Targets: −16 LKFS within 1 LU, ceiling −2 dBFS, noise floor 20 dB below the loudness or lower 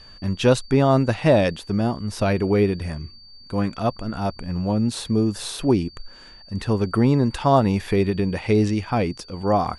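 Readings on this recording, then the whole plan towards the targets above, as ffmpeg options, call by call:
interfering tone 4,600 Hz; level of the tone −45 dBFS; integrated loudness −21.5 LKFS; sample peak −4.5 dBFS; target loudness −16.0 LKFS
→ -af "bandreject=frequency=4600:width=30"
-af "volume=5.5dB,alimiter=limit=-2dB:level=0:latency=1"

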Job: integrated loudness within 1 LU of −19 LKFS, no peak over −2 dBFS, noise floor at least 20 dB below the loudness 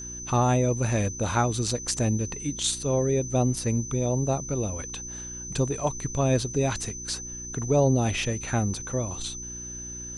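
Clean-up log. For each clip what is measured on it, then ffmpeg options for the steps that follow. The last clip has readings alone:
mains hum 60 Hz; hum harmonics up to 360 Hz; level of the hum −42 dBFS; interfering tone 6,100 Hz; level of the tone −36 dBFS; integrated loudness −27.0 LKFS; sample peak −10.0 dBFS; target loudness −19.0 LKFS
→ -af "bandreject=frequency=60:width_type=h:width=4,bandreject=frequency=120:width_type=h:width=4,bandreject=frequency=180:width_type=h:width=4,bandreject=frequency=240:width_type=h:width=4,bandreject=frequency=300:width_type=h:width=4,bandreject=frequency=360:width_type=h:width=4"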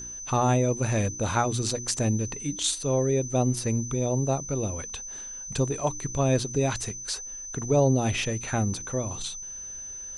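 mains hum none found; interfering tone 6,100 Hz; level of the tone −36 dBFS
→ -af "bandreject=frequency=6100:width=30"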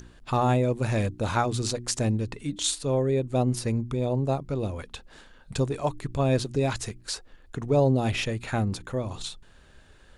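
interfering tone none found; integrated loudness −27.0 LKFS; sample peak −10.5 dBFS; target loudness −19.0 LKFS
→ -af "volume=8dB"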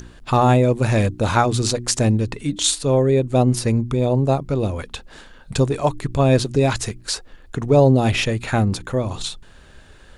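integrated loudness −19.0 LKFS; sample peak −2.5 dBFS; background noise floor −46 dBFS

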